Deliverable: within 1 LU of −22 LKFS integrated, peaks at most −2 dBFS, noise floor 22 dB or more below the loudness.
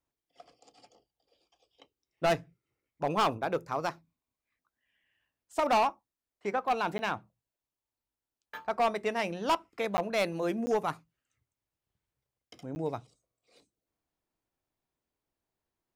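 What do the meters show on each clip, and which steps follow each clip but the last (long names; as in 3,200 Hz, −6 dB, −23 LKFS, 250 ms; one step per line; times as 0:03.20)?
share of clipped samples 0.9%; peaks flattened at −21.5 dBFS; number of dropouts 4; longest dropout 10 ms; integrated loudness −31.5 LKFS; sample peak −21.5 dBFS; target loudness −22.0 LKFS
→ clipped peaks rebuilt −21.5 dBFS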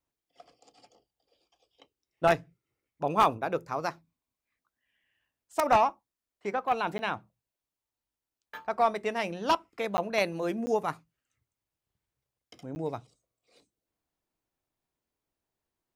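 share of clipped samples 0.0%; number of dropouts 4; longest dropout 10 ms
→ repair the gap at 0:06.98/0:09.97/0:10.66/0:12.75, 10 ms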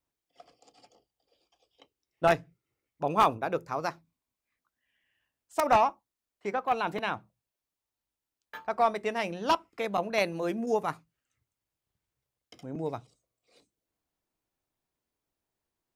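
number of dropouts 0; integrated loudness −29.5 LKFS; sample peak −12.5 dBFS; target loudness −22.0 LKFS
→ level +7.5 dB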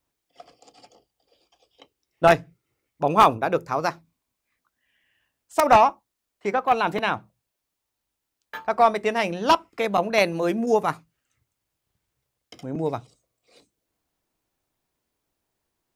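integrated loudness −22.0 LKFS; sample peak −5.0 dBFS; background noise floor −82 dBFS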